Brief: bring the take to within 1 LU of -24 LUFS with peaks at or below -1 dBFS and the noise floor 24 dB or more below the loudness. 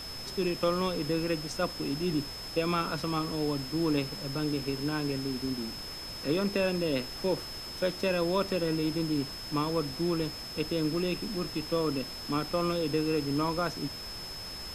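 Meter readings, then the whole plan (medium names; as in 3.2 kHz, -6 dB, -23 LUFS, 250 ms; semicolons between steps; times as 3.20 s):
steady tone 5.2 kHz; tone level -40 dBFS; noise floor -41 dBFS; noise floor target -56 dBFS; loudness -31.5 LUFS; peak level -14.5 dBFS; loudness target -24.0 LUFS
-> band-stop 5.2 kHz, Q 30; noise print and reduce 15 dB; trim +7.5 dB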